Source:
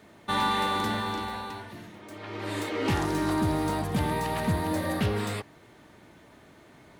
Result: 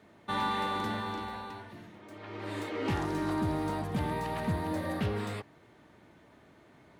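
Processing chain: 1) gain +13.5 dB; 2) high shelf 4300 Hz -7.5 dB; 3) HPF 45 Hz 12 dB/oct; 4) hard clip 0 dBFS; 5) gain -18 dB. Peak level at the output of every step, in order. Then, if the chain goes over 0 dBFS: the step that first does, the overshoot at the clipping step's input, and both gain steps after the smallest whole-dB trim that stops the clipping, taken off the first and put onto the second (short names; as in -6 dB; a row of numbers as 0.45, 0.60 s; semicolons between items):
-3.0, -3.0, -2.5, -2.5, -20.5 dBFS; no overload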